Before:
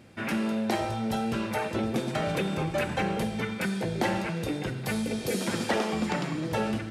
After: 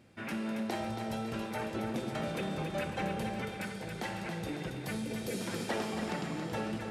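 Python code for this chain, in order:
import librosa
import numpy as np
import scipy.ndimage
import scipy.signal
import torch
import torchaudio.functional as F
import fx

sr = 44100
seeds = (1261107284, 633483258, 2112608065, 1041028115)

y = fx.peak_eq(x, sr, hz=320.0, db=-6.5, octaves=2.7, at=(3.61, 4.22))
y = fx.echo_feedback(y, sr, ms=276, feedback_pct=53, wet_db=-6.5)
y = F.gain(torch.from_numpy(y), -8.0).numpy()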